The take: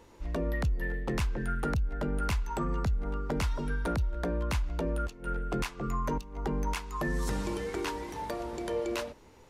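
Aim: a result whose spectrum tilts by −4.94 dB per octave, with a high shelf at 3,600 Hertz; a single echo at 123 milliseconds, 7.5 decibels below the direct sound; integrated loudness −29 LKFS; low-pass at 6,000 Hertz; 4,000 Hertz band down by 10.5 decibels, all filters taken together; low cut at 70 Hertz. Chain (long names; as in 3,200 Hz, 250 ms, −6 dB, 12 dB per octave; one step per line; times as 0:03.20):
high-pass filter 70 Hz
low-pass filter 6,000 Hz
high-shelf EQ 3,600 Hz −8 dB
parametric band 4,000 Hz −8.5 dB
single-tap delay 123 ms −7.5 dB
level +5.5 dB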